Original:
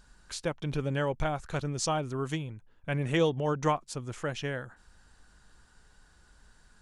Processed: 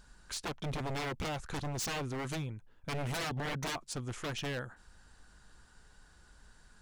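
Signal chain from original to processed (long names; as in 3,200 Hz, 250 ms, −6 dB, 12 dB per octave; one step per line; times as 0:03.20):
wave folding −31 dBFS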